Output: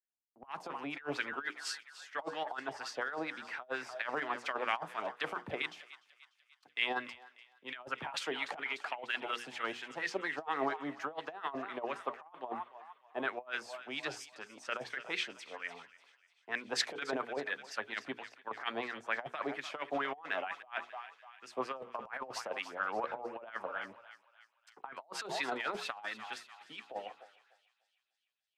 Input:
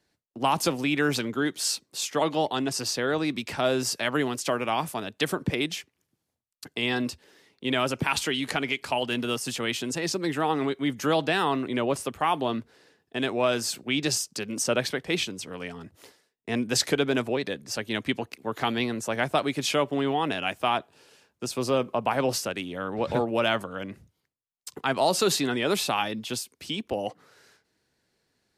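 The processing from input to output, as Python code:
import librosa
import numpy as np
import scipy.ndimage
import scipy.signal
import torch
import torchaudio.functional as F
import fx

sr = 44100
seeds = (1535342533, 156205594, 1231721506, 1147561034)

y = fx.wah_lfo(x, sr, hz=4.3, low_hz=680.0, high_hz=1900.0, q=2.9)
y = fx.hum_notches(y, sr, base_hz=60, count=8)
y = fx.echo_thinned(y, sr, ms=296, feedback_pct=77, hz=1100.0, wet_db=-13.0)
y = fx.over_compress(y, sr, threshold_db=-37.0, ratio=-0.5)
y = fx.band_widen(y, sr, depth_pct=70)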